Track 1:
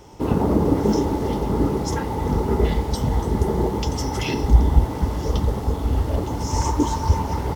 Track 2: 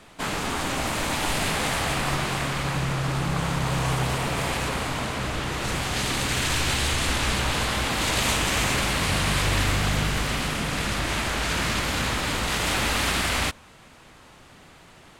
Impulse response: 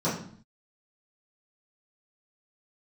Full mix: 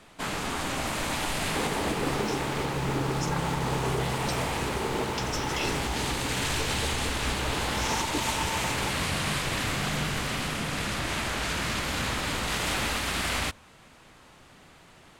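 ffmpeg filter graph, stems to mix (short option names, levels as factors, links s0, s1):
-filter_complex "[0:a]highpass=f=570:p=1,adelay=1350,volume=0.708[s0];[1:a]bandreject=f=50:t=h:w=6,bandreject=f=100:t=h:w=6,volume=0.668[s1];[s0][s1]amix=inputs=2:normalize=0,alimiter=limit=0.133:level=0:latency=1:release=331"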